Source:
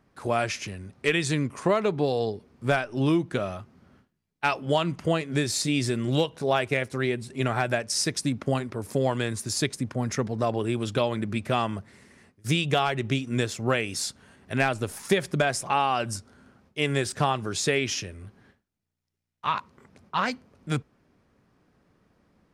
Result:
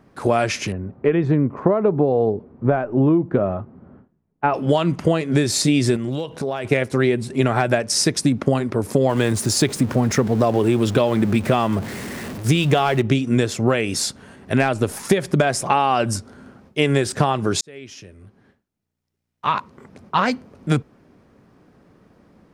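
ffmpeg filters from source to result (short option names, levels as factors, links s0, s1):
-filter_complex "[0:a]asettb=1/sr,asplit=3[s0][s1][s2];[s0]atrim=end=0.724[s3];[s1]atrim=start=0.72:end=4.54,asetpts=PTS-STARTPTS,afade=t=in:d=0.004:c=qsin,afade=t=out:st=3.816:d=0.004:c=qsin,lowpass=1100[s4];[s2]atrim=start=4.536[s5];[s3][s4]acrossfade=d=0.004:c1=hsin:c2=qsin[s6];[s6][s5]acrossfade=d=0.004:c1=qsin:c2=hsin,asettb=1/sr,asplit=3[s7][s8][s9];[s7]atrim=end=5.964[s10];[s8]atrim=start=5.96:end=6.65,asetpts=PTS-STARTPTS,afade=t=in:d=0.004:c=qsin,afade=t=out:st=0.686:d=0.004:c=qsin,acompressor=threshold=0.0251:ratio=10:attack=3.2:release=140:knee=1:detection=peak[s11];[s9]atrim=start=6.646[s12];[s10][s11]acrossfade=d=0.004:c1=hsin:c2=qsin[s13];[s13][s12]acrossfade=d=0.004:c1=qsin:c2=hsin,asettb=1/sr,asplit=3[s14][s15][s16];[s14]atrim=end=9.094[s17];[s15]atrim=start=9.09:end=13.02,asetpts=PTS-STARTPTS,afade=t=in:d=0.004:c=qsin,afade=t=out:st=3.926:d=0.004:c=qsin,aeval=exprs='val(0)+0.5*0.0141*sgn(val(0))':c=same[s18];[s16]atrim=start=13.016[s19];[s17][s18]acrossfade=d=0.004:c1=hsin:c2=qsin[s20];[s20][s19]acrossfade=d=0.004:c1=qsin:c2=hsin,asplit=2[s21][s22];[s21]atrim=end=17.61,asetpts=PTS-STARTPTS,afade=t=out:st=17.606:d=0.004:c=hsin[s23];[s22]atrim=start=17.61,asetpts=PTS-STARTPTS,afade=t=in:d=2.67[s24];[s23][s24]concat=n=2:v=0:a=1,equalizer=f=330:w=0.33:g=6,acompressor=threshold=0.1:ratio=6,volume=2.24"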